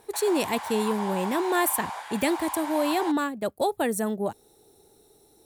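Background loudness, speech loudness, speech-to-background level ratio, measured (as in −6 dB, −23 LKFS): −34.5 LKFS, −27.0 LKFS, 7.5 dB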